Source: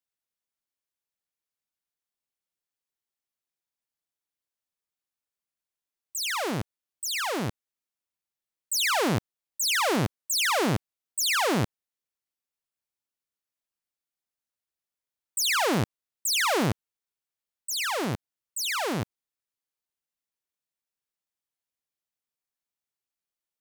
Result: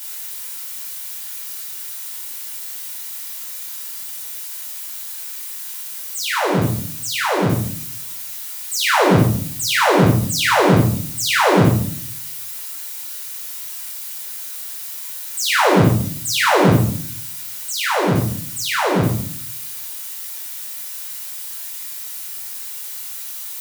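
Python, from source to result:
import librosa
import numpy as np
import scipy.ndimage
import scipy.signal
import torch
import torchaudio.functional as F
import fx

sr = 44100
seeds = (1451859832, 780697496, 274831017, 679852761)

y = x + 0.5 * 10.0 ** (-27.5 / 20.0) * np.diff(np.sign(x), prepend=np.sign(x[:1]))
y = fx.high_shelf(y, sr, hz=2400.0, db=-7.5)
y = fx.room_shoebox(y, sr, seeds[0], volume_m3=650.0, walls='furnished', distance_m=4.7)
y = F.gain(torch.from_numpy(y), 5.0).numpy()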